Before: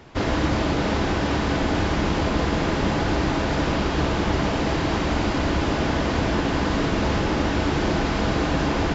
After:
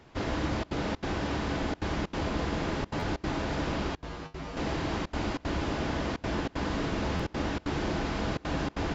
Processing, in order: step gate "xxxxxxxx.xxx.x" 190 bpm -24 dB; 3.96–4.57 resonator 53 Hz, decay 0.22 s, harmonics odd, mix 90%; stuck buffer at 2.99/7.16, samples 512, times 2; gain -8.5 dB

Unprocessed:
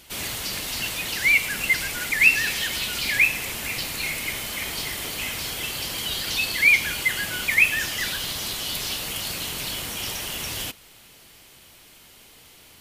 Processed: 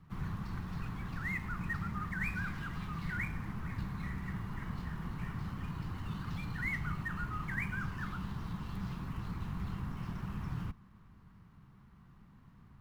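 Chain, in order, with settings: median filter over 5 samples; EQ curve 410 Hz 0 dB, 790 Hz -22 dB, 1300 Hz -6 dB, 2900 Hz -29 dB; frequency shift -220 Hz; gain +1.5 dB

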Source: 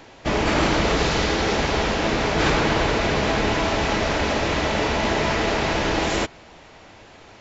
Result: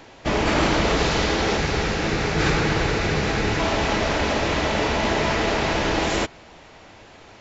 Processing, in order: 1.57–3.6 thirty-one-band EQ 100 Hz +4 dB, 160 Hz +4 dB, 250 Hz -5 dB, 630 Hz -7 dB, 1000 Hz -6 dB, 3150 Hz -4 dB

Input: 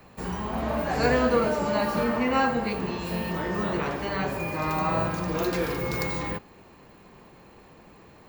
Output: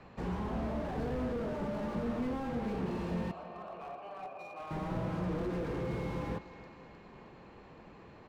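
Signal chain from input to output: Bessel low-pass 3400 Hz, order 2; compressor 2:1, threshold -29 dBFS, peak gain reduction 6.5 dB; 3.31–4.71 vowel filter a; feedback echo 0.31 s, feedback 51%, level -20 dB; slew limiter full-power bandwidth 11 Hz; gain -2 dB

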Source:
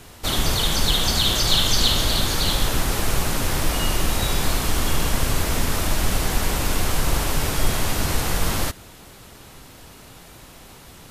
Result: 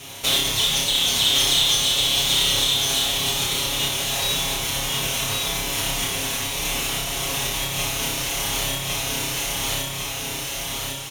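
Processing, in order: minimum comb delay 0.31 ms; high shelf 6900 Hz -6 dB; feedback echo 1.106 s, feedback 34%, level -3 dB; compressor 6:1, threshold -27 dBFS, peak gain reduction 14 dB; HPF 42 Hz; tilt shelf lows -7 dB, about 790 Hz; comb 7.3 ms, depth 72%; on a send: flutter echo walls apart 5.1 m, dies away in 0.5 s; on the sum: gain +3.5 dB

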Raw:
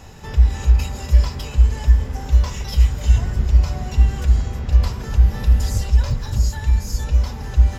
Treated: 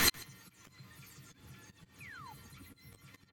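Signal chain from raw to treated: spectral delay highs early, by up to 0.292 s; three-band isolator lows -13 dB, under 520 Hz, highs -21 dB, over 5700 Hz; painted sound fall, 4.69–5.44, 350–1100 Hz -29 dBFS; in parallel at +2.5 dB: limiter -27 dBFS, peak gain reduction 9 dB; on the sum: flipped gate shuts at -23 dBFS, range -40 dB; soft clip -18 dBFS, distortion -35 dB; auto swell 0.343 s; doubler 25 ms -8.5 dB; on a send: echo 0.33 s -21.5 dB; on the sum: speed mistake 33 rpm record played at 78 rpm; gain +13 dB

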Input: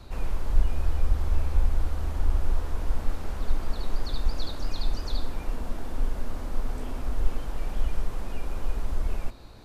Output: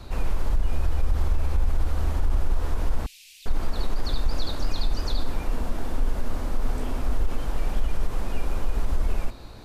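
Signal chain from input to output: 3.06–3.46 elliptic high-pass 2500 Hz, stop band 50 dB; limiter -18.5 dBFS, peak gain reduction 10 dB; gain +5 dB

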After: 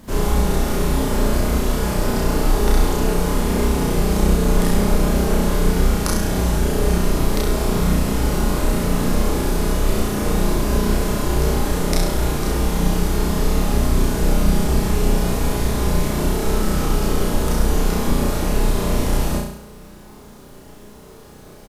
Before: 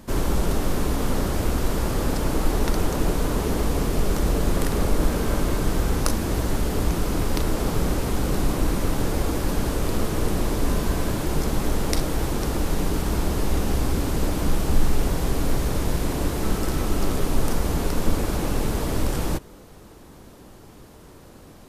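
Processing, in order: doubler 29 ms -4.5 dB; requantised 10-bit, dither none; flutter echo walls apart 5.8 m, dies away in 0.72 s

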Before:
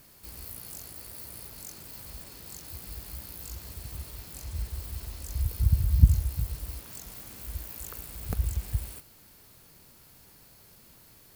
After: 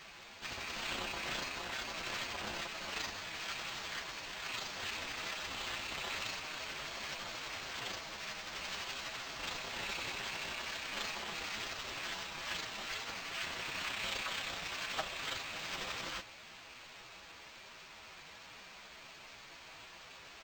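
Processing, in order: Chebyshev high-pass 600 Hz, order 8; comb 6.2 ms, depth 44%; time stretch by phase-locked vocoder 1.8×; decimation joined by straight lines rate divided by 4×; gain +5.5 dB

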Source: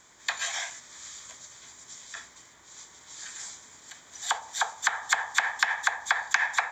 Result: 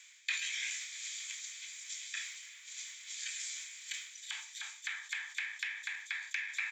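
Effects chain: reverse; compressor 16:1, threshold -38 dBFS, peak gain reduction 21.5 dB; reverse; ladder high-pass 2200 Hz, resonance 65%; echo 0.323 s -20.5 dB; transient shaper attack +4 dB, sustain +8 dB; sustainer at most 82 dB/s; gain +10 dB

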